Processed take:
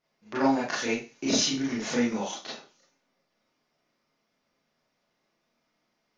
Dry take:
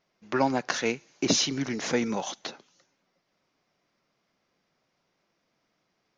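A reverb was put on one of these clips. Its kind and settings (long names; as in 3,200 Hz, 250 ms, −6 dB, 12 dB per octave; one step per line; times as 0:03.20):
four-comb reverb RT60 0.3 s, combs from 26 ms, DRR −6.5 dB
level −8 dB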